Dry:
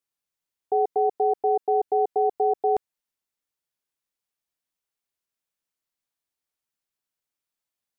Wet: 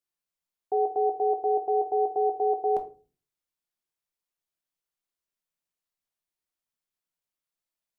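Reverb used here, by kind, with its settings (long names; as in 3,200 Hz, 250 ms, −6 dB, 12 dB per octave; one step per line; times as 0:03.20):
rectangular room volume 210 cubic metres, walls furnished, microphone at 0.92 metres
level −4.5 dB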